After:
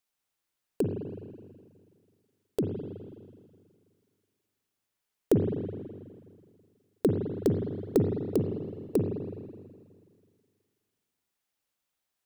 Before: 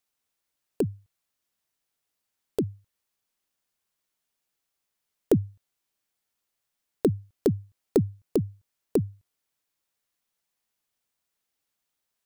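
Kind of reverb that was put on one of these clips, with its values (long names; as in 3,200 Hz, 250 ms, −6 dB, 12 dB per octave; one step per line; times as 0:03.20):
spring reverb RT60 2 s, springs 41/53 ms, chirp 60 ms, DRR 3 dB
level −2.5 dB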